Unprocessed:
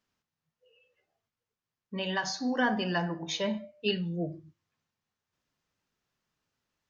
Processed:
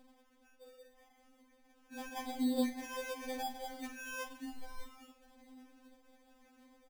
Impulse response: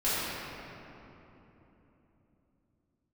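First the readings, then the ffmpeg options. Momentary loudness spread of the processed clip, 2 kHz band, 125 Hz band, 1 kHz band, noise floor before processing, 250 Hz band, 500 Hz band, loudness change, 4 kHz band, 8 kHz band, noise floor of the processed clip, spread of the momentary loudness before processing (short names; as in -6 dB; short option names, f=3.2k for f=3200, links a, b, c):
24 LU, -11.0 dB, under -25 dB, -7.5 dB, under -85 dBFS, -5.5 dB, -9.0 dB, -8.5 dB, -13.0 dB, n/a, -68 dBFS, 9 LU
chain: -filter_complex "[0:a]flanger=delay=7.7:depth=4.8:regen=45:speed=1.3:shape=sinusoidal,acrossover=split=1600[a][b];[a]aeval=exprs='val(0)*(1-0.5/2+0.5/2*cos(2*PI*3.8*n/s))':c=same[c];[b]aeval=exprs='val(0)*(1-0.5/2-0.5/2*cos(2*PI*3.8*n/s))':c=same[d];[c][d]amix=inputs=2:normalize=0,acompressor=mode=upward:threshold=-53dB:ratio=2.5,lowpass=5.7k,equalizer=f=120:w=0.88:g=7.5,bandreject=f=52.87:t=h:w=4,bandreject=f=105.74:t=h:w=4,bandreject=f=158.61:t=h:w=4,bandreject=f=211.48:t=h:w=4,bandreject=f=264.35:t=h:w=4,bandreject=f=317.22:t=h:w=4,bandreject=f=370.09:t=h:w=4,bandreject=f=422.96:t=h:w=4,bandreject=f=475.83:t=h:w=4,bandreject=f=528.7:t=h:w=4,bandreject=f=581.57:t=h:w=4,bandreject=f=634.44:t=h:w=4,bandreject=f=687.31:t=h:w=4,bandreject=f=740.18:t=h:w=4,bandreject=f=793.05:t=h:w=4,acrusher=samples=32:mix=1:aa=0.000001,asplit=8[e][f][g][h][i][j][k][l];[f]adelay=200,afreqshift=-61,volume=-12dB[m];[g]adelay=400,afreqshift=-122,volume=-16.6dB[n];[h]adelay=600,afreqshift=-183,volume=-21.2dB[o];[i]adelay=800,afreqshift=-244,volume=-25.7dB[p];[j]adelay=1000,afreqshift=-305,volume=-30.3dB[q];[k]adelay=1200,afreqshift=-366,volume=-34.9dB[r];[l]adelay=1400,afreqshift=-427,volume=-39.5dB[s];[e][m][n][o][p][q][r][s]amix=inputs=8:normalize=0,acompressor=threshold=-45dB:ratio=4,afftfilt=real='re*3.46*eq(mod(b,12),0)':imag='im*3.46*eq(mod(b,12),0)':win_size=2048:overlap=0.75,volume=9dB"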